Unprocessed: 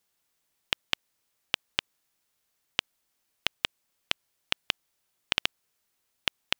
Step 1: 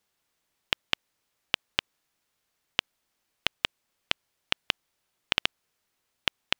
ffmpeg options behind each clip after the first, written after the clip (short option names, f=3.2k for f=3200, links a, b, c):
-af "highshelf=f=6.3k:g=-7.5,volume=2.5dB"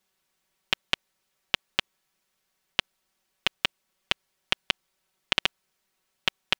-af "aecho=1:1:5.3:0.65"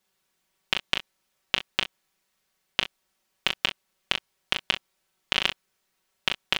-af "aecho=1:1:23|38|63:0.2|0.562|0.15"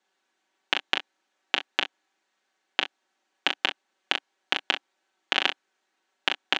-af "highpass=f=250:w=0.5412,highpass=f=250:w=1.3066,equalizer=f=290:t=q:w=4:g=10,equalizer=f=800:t=q:w=4:g=7,equalizer=f=1.6k:t=q:w=4:g=6,equalizer=f=5.1k:t=q:w=4:g=-5,lowpass=f=7k:w=0.5412,lowpass=f=7k:w=1.3066"